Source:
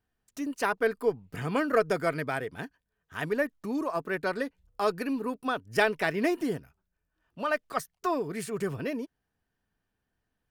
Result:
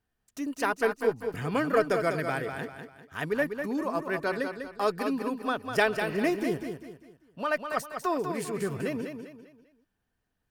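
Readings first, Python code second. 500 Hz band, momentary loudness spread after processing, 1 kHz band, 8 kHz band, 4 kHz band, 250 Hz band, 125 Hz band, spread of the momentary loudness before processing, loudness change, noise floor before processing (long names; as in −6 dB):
+1.0 dB, 13 LU, +1.0 dB, +1.0 dB, +0.5 dB, +1.0 dB, +1.0 dB, 11 LU, +0.5 dB, −83 dBFS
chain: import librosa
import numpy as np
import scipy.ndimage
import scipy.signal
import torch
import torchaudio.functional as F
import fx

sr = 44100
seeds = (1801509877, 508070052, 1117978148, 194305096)

p1 = fx.spec_repair(x, sr, seeds[0], start_s=5.95, length_s=0.22, low_hz=570.0, high_hz=8200.0, source='both')
y = p1 + fx.echo_feedback(p1, sr, ms=198, feedback_pct=37, wet_db=-7.0, dry=0)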